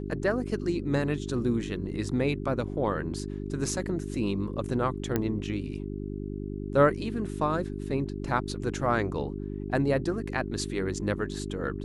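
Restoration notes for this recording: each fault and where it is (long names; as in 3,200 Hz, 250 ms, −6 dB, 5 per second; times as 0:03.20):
mains hum 50 Hz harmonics 8 −35 dBFS
0:05.16: click −13 dBFS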